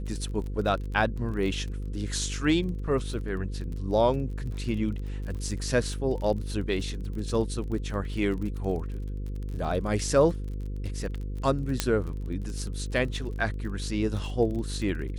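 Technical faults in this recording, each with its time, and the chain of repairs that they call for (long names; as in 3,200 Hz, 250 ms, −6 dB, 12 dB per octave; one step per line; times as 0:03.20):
mains buzz 50 Hz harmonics 10 −33 dBFS
surface crackle 28 per second −35 dBFS
0:11.80: click −8 dBFS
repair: click removal
hum removal 50 Hz, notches 10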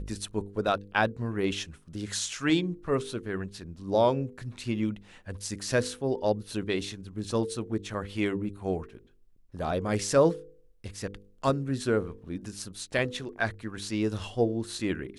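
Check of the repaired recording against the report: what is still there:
none of them is left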